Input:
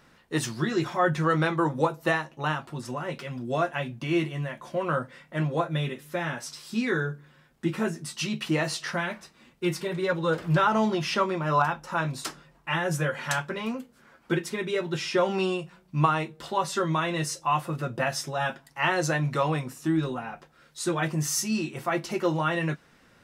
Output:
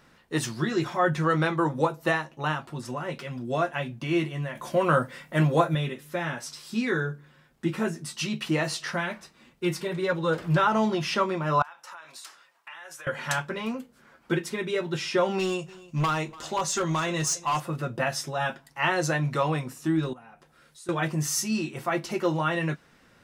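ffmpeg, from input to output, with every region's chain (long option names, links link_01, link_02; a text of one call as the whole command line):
ffmpeg -i in.wav -filter_complex "[0:a]asettb=1/sr,asplit=3[link_01][link_02][link_03];[link_01]atrim=end=4.554[link_04];[link_02]atrim=start=4.55:end=5.75,asetpts=PTS-STARTPTS,afade=type=in:duration=0.004:curve=qsin,afade=type=out:start_time=1.196:duration=0.004:curve=qsin,highshelf=frequency=8900:gain=11,acontrast=31[link_05];[link_03]atrim=start=5.746[link_06];[link_04][link_05]acrossfade=duration=0.004:curve1=hsin:curve2=qsin[link_07];[link_07][link_06]acrossfade=duration=0.004:curve1=qsin:curve2=hsin,asettb=1/sr,asplit=3[link_08][link_09][link_10];[link_08]atrim=end=11.624[link_11];[link_09]atrim=start=11.62:end=13.07,asetpts=PTS-STARTPTS,afade=type=in:duration=0.004:curve=qsin,afade=type=out:start_time=1.446:duration=0.004:curve=qsin,highpass=940,acompressor=threshold=-39dB:ratio=16:attack=3.2:release=140:knee=1:detection=peak[link_12];[link_10]atrim=start=13.066[link_13];[link_11][link_12]acrossfade=duration=0.004:curve1=hsin:curve2=qsin[link_14];[link_14][link_13]acrossfade=duration=0.004:curve1=qsin:curve2=hsin,asettb=1/sr,asplit=3[link_15][link_16][link_17];[link_15]atrim=end=15.394[link_18];[link_16]atrim=start=15.39:end=17.6,asetpts=PTS-STARTPTS,afade=type=in:duration=0.004:curve=qsin,afade=type=out:start_time=2.206:duration=0.004:curve=qsin,equalizer=frequency=6600:width=2.6:gain=12.5,asoftclip=type=hard:threshold=-21.5dB,aecho=1:1:292:0.1,atrim=end_sample=97461[link_19];[link_17]atrim=start=17.596[link_20];[link_18][link_19]acrossfade=duration=0.004:curve1=hsin:curve2=qsin[link_21];[link_21][link_20]acrossfade=duration=0.004:curve1=qsin:curve2=hsin,asettb=1/sr,asplit=3[link_22][link_23][link_24];[link_22]atrim=end=20.134[link_25];[link_23]atrim=start=20.13:end=20.89,asetpts=PTS-STARTPTS,afade=type=in:duration=0.004:curve=qsin,afade=type=out:start_time=0.756:duration=0.004:curve=qsin,equalizer=frequency=10000:width=1.7:gain=7,acompressor=threshold=-53dB:ratio=2.5:attack=3.2:release=140:knee=1:detection=peak[link_26];[link_24]atrim=start=20.886[link_27];[link_25][link_26]acrossfade=duration=0.004:curve1=hsin:curve2=qsin[link_28];[link_28][link_27]acrossfade=duration=0.004:curve1=qsin:curve2=hsin" out.wav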